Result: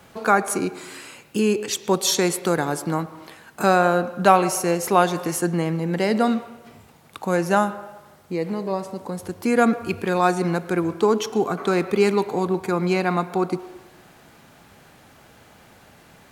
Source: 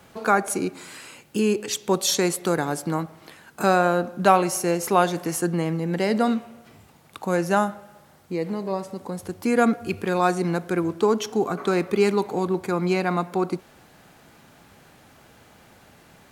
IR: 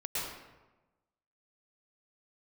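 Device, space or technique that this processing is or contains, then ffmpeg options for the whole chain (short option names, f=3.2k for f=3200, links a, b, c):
filtered reverb send: -filter_complex "[0:a]asplit=2[a][b];[b]highpass=f=280:w=0.5412,highpass=f=280:w=1.3066,lowpass=4.5k[c];[1:a]atrim=start_sample=2205[d];[c][d]afir=irnorm=-1:irlink=0,volume=-19.5dB[e];[a][e]amix=inputs=2:normalize=0,volume=1.5dB"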